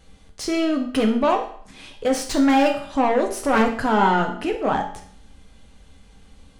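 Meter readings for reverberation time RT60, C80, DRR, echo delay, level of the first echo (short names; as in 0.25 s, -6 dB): 0.55 s, 12.0 dB, 2.0 dB, none, none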